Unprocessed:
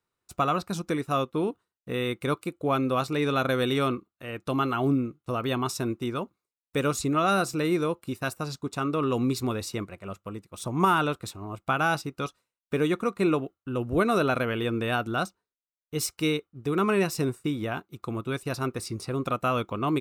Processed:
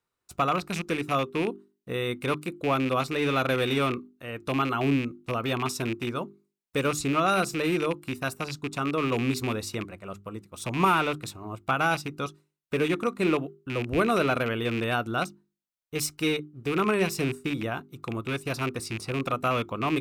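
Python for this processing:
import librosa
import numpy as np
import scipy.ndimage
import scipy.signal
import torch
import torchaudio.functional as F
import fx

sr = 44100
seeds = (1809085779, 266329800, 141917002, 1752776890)

y = fx.rattle_buzz(x, sr, strikes_db=-33.0, level_db=-23.0)
y = fx.hum_notches(y, sr, base_hz=50, count=8)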